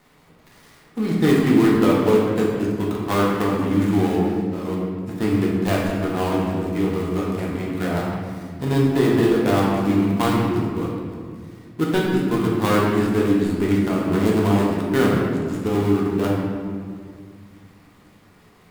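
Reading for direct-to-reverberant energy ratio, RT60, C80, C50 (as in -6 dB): -4.5 dB, 2.0 s, 1.5 dB, 0.0 dB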